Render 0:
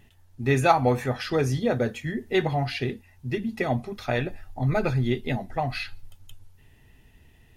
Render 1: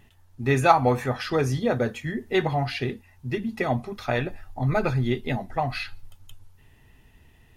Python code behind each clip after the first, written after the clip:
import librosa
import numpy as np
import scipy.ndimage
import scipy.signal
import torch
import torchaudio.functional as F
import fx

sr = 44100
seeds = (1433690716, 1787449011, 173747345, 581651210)

y = fx.peak_eq(x, sr, hz=1100.0, db=4.5, octaves=0.79)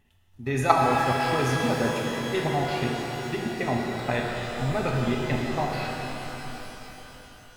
y = fx.level_steps(x, sr, step_db=13)
y = fx.rev_shimmer(y, sr, seeds[0], rt60_s=3.9, semitones=12, shimmer_db=-8, drr_db=-1.0)